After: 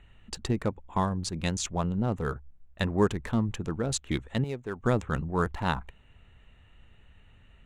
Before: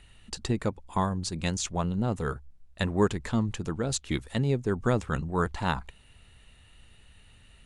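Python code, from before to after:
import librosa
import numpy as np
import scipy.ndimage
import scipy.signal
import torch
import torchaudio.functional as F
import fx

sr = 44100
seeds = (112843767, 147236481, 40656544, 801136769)

y = fx.wiener(x, sr, points=9)
y = fx.low_shelf(y, sr, hz=460.0, db=-12.0, at=(4.44, 4.84))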